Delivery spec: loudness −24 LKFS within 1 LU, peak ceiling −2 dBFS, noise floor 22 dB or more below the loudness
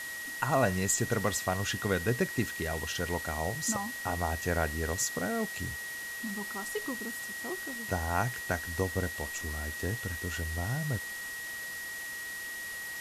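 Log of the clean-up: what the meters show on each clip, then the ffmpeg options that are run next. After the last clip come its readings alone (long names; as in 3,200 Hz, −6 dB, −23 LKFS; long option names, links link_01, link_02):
interfering tone 1,900 Hz; level of the tone −38 dBFS; background noise floor −40 dBFS; target noise floor −55 dBFS; integrated loudness −32.5 LKFS; sample peak −14.0 dBFS; target loudness −24.0 LKFS
→ -af "bandreject=frequency=1900:width=30"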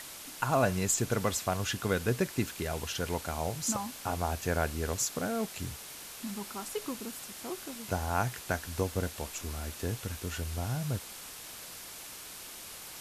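interfering tone none found; background noise floor −46 dBFS; target noise floor −56 dBFS
→ -af "afftdn=noise_reduction=10:noise_floor=-46"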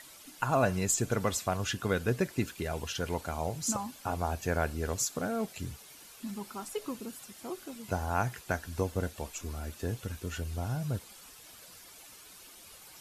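background noise floor −53 dBFS; target noise floor −56 dBFS
→ -af "afftdn=noise_reduction=6:noise_floor=-53"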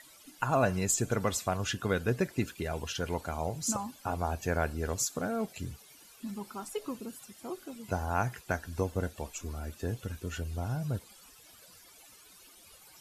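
background noise floor −57 dBFS; integrated loudness −34.0 LKFS; sample peak −14.5 dBFS; target loudness −24.0 LKFS
→ -af "volume=10dB"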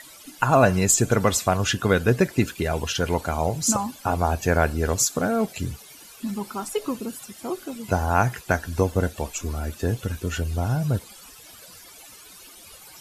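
integrated loudness −24.0 LKFS; sample peak −4.5 dBFS; background noise floor −47 dBFS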